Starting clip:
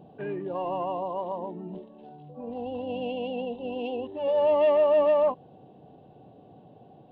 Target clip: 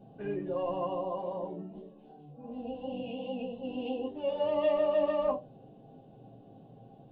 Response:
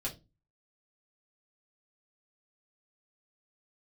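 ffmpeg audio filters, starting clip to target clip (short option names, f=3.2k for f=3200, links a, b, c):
-filter_complex "[0:a]asplit=3[a][b][c];[a]afade=t=out:st=1.61:d=0.02[d];[b]flanger=delay=20:depth=6.3:speed=2.7,afade=t=in:st=1.61:d=0.02,afade=t=out:st=3.61:d=0.02[e];[c]afade=t=in:st=3.61:d=0.02[f];[d][e][f]amix=inputs=3:normalize=0[g];[1:a]atrim=start_sample=2205[h];[g][h]afir=irnorm=-1:irlink=0,volume=-5.5dB"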